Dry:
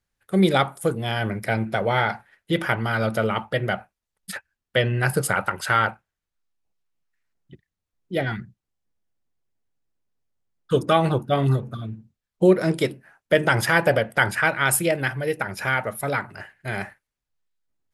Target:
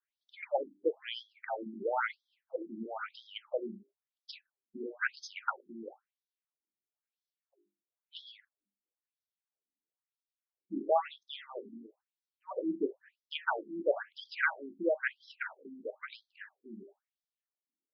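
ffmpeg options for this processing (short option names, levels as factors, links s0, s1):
-af "bandreject=f=50:t=h:w=6,bandreject=f=100:t=h:w=6,bandreject=f=150:t=h:w=6,bandreject=f=200:t=h:w=6,bandreject=f=250:t=h:w=6,bandreject=f=300:t=h:w=6,bandreject=f=350:t=h:w=6,bandreject=f=400:t=h:w=6,afftfilt=real='re*between(b*sr/1024,250*pow(4600/250,0.5+0.5*sin(2*PI*1*pts/sr))/1.41,250*pow(4600/250,0.5+0.5*sin(2*PI*1*pts/sr))*1.41)':imag='im*between(b*sr/1024,250*pow(4600/250,0.5+0.5*sin(2*PI*1*pts/sr))/1.41,250*pow(4600/250,0.5+0.5*sin(2*PI*1*pts/sr))*1.41)':win_size=1024:overlap=0.75,volume=0.473"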